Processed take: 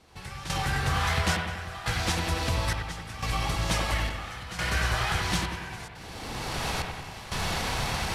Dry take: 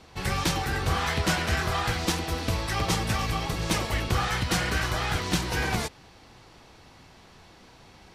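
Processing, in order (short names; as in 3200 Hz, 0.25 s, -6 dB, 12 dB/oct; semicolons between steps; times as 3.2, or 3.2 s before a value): CVSD 64 kbps; recorder AGC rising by 26 dB/s; dynamic EQ 320 Hz, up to -8 dB, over -45 dBFS, Q 1.2; compressor 1.5:1, threshold -36 dBFS, peak gain reduction 5.5 dB; step gate "....xxxxxxx" 121 bpm -12 dB; analogue delay 94 ms, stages 2048, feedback 59%, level -5.5 dB; gain +4 dB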